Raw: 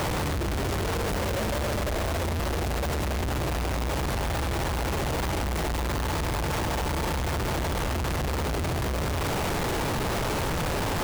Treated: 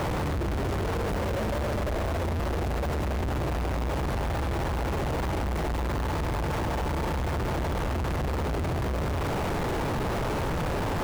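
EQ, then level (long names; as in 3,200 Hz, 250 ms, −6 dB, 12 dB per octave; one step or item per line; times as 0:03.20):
high-shelf EQ 2,600 Hz −9.5 dB
0.0 dB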